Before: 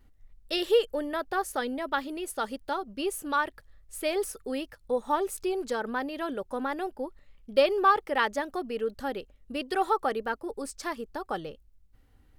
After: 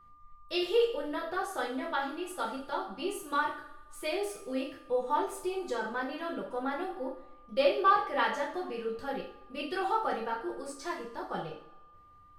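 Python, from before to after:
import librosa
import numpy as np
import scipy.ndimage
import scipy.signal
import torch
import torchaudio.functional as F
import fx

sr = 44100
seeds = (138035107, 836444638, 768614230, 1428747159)

y = fx.high_shelf(x, sr, hz=11000.0, db=-11.5)
y = fx.notch(y, sr, hz=430.0, q=12.0)
y = fx.rev_double_slope(y, sr, seeds[0], early_s=0.45, late_s=1.6, knee_db=-19, drr_db=-4.5)
y = y + 10.0 ** (-48.0 / 20.0) * np.sin(2.0 * np.pi * 1200.0 * np.arange(len(y)) / sr)
y = y * librosa.db_to_amplitude(-8.0)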